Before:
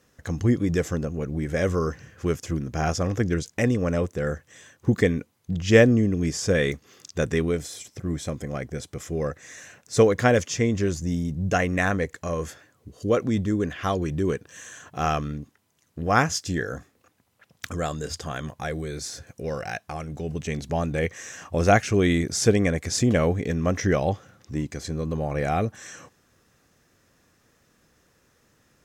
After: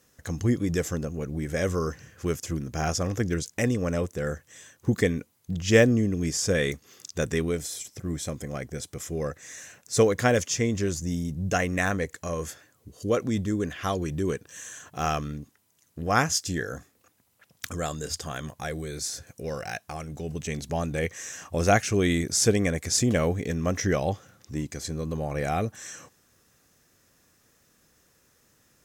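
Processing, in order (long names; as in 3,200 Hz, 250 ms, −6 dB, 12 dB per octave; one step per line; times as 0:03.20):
high-shelf EQ 5,800 Hz +10.5 dB
level −3 dB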